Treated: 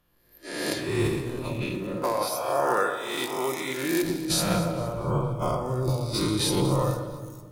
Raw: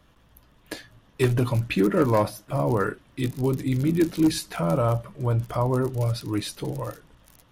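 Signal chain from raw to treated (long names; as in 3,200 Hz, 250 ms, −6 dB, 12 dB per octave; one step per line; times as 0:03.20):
peak hold with a rise ahead of every peak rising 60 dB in 1.16 s
0:02.02–0:04.03: high-pass filter 650 Hz 12 dB per octave
noise reduction from a noise print of the clip's start 19 dB
dynamic equaliser 1,700 Hz, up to −6 dB, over −39 dBFS, Q 0.97
compressor whose output falls as the input rises −28 dBFS, ratio −1
delay that swaps between a low-pass and a high-pass 116 ms, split 2,100 Hz, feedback 60%, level −10.5 dB
convolution reverb RT60 1.6 s, pre-delay 6 ms, DRR 6 dB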